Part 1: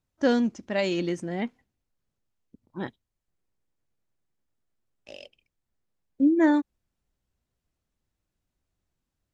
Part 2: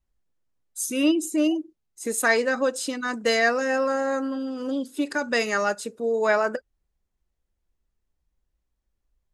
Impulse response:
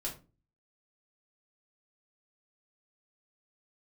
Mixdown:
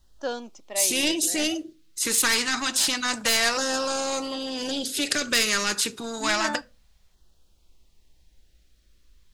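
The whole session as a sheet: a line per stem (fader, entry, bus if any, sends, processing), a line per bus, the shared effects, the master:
−1.0 dB, 0.00 s, no send, high-pass filter 620 Hz 12 dB per octave
+3.0 dB, 0.00 s, send −14.5 dB, parametric band 4,000 Hz +10 dB 1.6 octaves; soft clipping −11.5 dBFS, distortion −19 dB; every bin compressed towards the loudest bin 2 to 1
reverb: on, RT60 0.30 s, pre-delay 3 ms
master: auto-filter notch saw down 0.28 Hz 290–2,400 Hz

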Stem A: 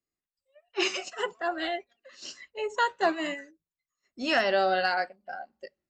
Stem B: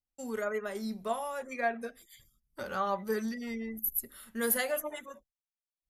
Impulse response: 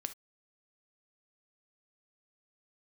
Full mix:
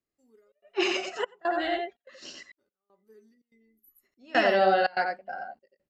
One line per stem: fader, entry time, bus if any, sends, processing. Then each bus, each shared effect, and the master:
+3.0 dB, 0.00 s, muted 0:02.43–0:03.90, no send, echo send −3.5 dB, high-shelf EQ 4,000 Hz −11.5 dB
−19.5 dB, 0.00 s, send −12 dB, no echo send, parametric band 310 Hz +13 dB 0.6 octaves; tuned comb filter 410 Hz, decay 0.17 s, harmonics odd, mix 80%; automatic ducking −23 dB, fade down 0.20 s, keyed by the first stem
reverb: on, pre-delay 3 ms
echo: single-tap delay 89 ms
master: gate pattern "xxxxx.xxxxxx.." 145 BPM −24 dB; parametric band 1,200 Hz −2.5 dB

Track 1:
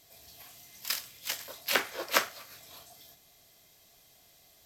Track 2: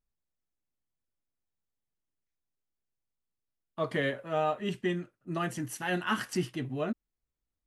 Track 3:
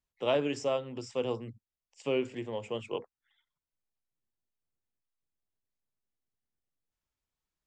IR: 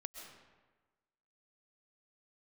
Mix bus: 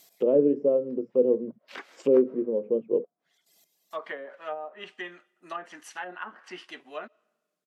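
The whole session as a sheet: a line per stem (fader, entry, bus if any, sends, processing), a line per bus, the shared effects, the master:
0.0 dB, 0.00 s, send −11 dB, reverb reduction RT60 1.8 s; high-shelf EQ 6,100 Hz +6.5 dB; gate pattern "x...xx.x" 169 BPM −12 dB; automatic ducking −7 dB, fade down 0.30 s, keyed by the third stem
+2.0 dB, 0.15 s, send −24 dB, high-pass filter 790 Hz 12 dB per octave
+2.0 dB, 0.00 s, no send, low shelf with overshoot 620 Hz +6.5 dB, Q 3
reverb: on, RT60 1.3 s, pre-delay 90 ms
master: treble cut that deepens with the level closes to 540 Hz, closed at −27 dBFS; linear-phase brick-wall high-pass 150 Hz

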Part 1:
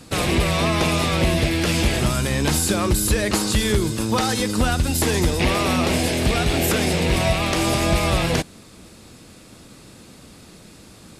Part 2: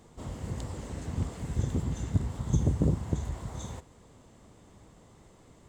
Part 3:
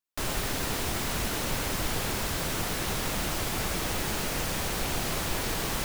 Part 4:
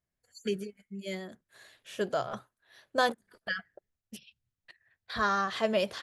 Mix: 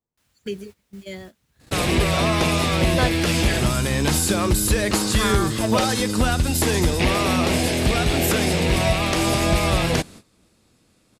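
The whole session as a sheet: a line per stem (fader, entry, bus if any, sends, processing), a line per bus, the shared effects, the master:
0.0 dB, 1.60 s, no send, no processing
−18.5 dB, 0.00 s, no send, no processing
−15.5 dB, 0.00 s, no send, high-pass filter 1,400 Hz 12 dB per octave; automatic ducking −8 dB, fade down 0.55 s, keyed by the fourth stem
+2.0 dB, 0.00 s, no send, no processing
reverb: not used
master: noise gate −40 dBFS, range −16 dB

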